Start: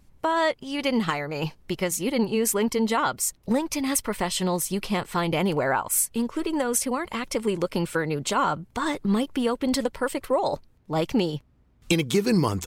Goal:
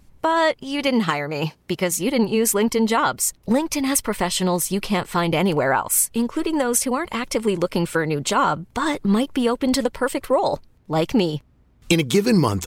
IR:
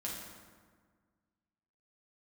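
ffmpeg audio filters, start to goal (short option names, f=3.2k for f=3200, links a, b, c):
-filter_complex "[0:a]asettb=1/sr,asplit=3[a][b][c];[a]atrim=end=0.874[d];[b]atrim=start=0.87:end=1.97,asetpts=PTS-STARTPTS,afade=t=in:d=0.004:c=qsin,afade=t=out:st=1.096:d=0.004:c=qsin,highpass=82[e];[c]atrim=start=1.966[f];[d][e]acrossfade=d=0.004:c1=hsin:c2=qsin[g];[g][f]acrossfade=d=0.004:c1=qsin:c2=hsin,volume=4.5dB"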